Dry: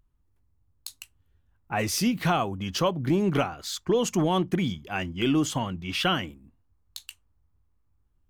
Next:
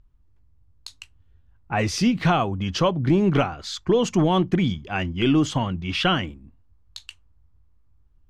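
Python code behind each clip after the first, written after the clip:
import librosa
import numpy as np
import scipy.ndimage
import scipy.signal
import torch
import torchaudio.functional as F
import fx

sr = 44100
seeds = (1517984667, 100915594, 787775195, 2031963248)

y = scipy.signal.sosfilt(scipy.signal.butter(2, 5400.0, 'lowpass', fs=sr, output='sos'), x)
y = fx.low_shelf(y, sr, hz=100.0, db=8.0)
y = y * librosa.db_to_amplitude(3.5)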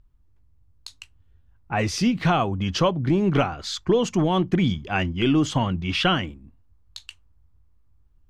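y = fx.rider(x, sr, range_db=4, speed_s=0.5)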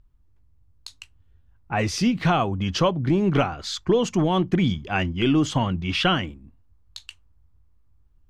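y = x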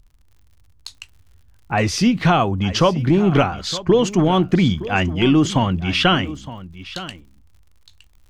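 y = fx.dmg_crackle(x, sr, seeds[0], per_s=78.0, level_db=-49.0)
y = y + 10.0 ** (-15.5 / 20.0) * np.pad(y, (int(915 * sr / 1000.0), 0))[:len(y)]
y = y * librosa.db_to_amplitude(5.0)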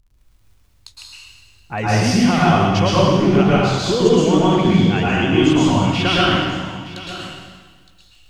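y = fx.rev_plate(x, sr, seeds[1], rt60_s=1.5, hf_ratio=1.0, predelay_ms=100, drr_db=-7.5)
y = y * librosa.db_to_amplitude(-6.0)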